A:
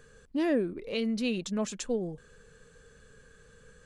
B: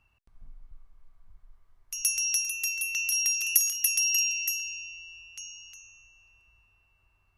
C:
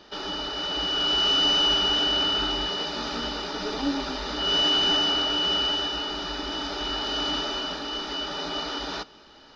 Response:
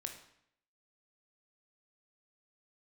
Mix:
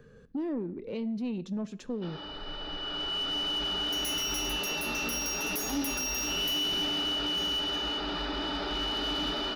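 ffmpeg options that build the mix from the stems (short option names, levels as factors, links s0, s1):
-filter_complex "[0:a]equalizer=f=200:w=0.42:g=12.5,acompressor=threshold=0.0282:ratio=2,volume=0.473,asplit=2[s0][s1];[s1]volume=0.398[s2];[1:a]adelay=2000,volume=1.33[s3];[2:a]lowpass=4100,dynaudnorm=f=410:g=9:m=6.68,adelay=1900,volume=0.224,asplit=2[s4][s5];[s5]volume=0.631[s6];[3:a]atrim=start_sample=2205[s7];[s2][s6]amix=inputs=2:normalize=0[s8];[s8][s7]afir=irnorm=-1:irlink=0[s9];[s0][s3][s4][s9]amix=inputs=4:normalize=0,acrossover=split=320|3000[s10][s11][s12];[s11]acompressor=threshold=0.0282:ratio=6[s13];[s10][s13][s12]amix=inputs=3:normalize=0,asoftclip=type=tanh:threshold=0.0501,equalizer=f=8400:t=o:w=0.69:g=-15"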